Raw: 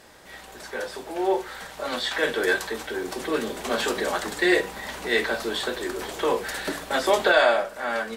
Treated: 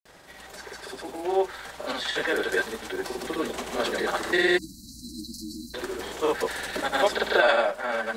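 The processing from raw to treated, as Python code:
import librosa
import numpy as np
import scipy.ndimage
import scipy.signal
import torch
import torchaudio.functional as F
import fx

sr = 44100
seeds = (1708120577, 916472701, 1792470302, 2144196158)

y = fx.granulator(x, sr, seeds[0], grain_ms=100.0, per_s=20.0, spray_ms=100.0, spread_st=0)
y = fx.spec_erase(y, sr, start_s=4.58, length_s=1.16, low_hz=330.0, high_hz=3900.0)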